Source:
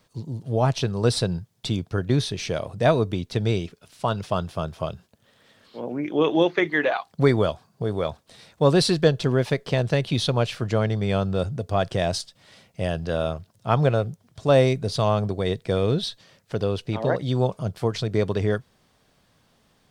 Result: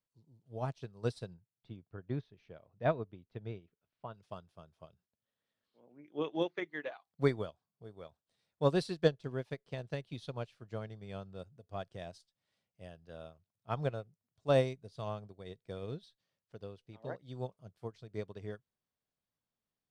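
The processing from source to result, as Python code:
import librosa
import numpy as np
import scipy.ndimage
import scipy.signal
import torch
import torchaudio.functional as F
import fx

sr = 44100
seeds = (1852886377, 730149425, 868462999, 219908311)

y = fx.lowpass(x, sr, hz=2400.0, slope=12, at=(1.34, 4.14))
y = fx.upward_expand(y, sr, threshold_db=-29.0, expansion=2.5)
y = y * 10.0 ** (-8.0 / 20.0)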